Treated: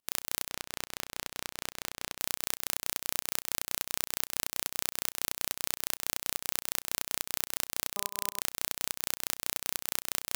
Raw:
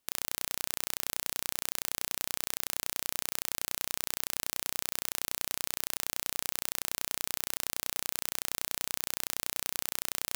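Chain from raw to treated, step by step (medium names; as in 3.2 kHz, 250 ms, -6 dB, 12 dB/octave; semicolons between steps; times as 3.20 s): 0.50–2.19 s: treble shelf 6.8 kHz -11 dB; 7.95–8.40 s: de-hum 201.8 Hz, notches 6; volume shaper 141 bpm, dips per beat 2, -16 dB, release 178 ms; trim +2.5 dB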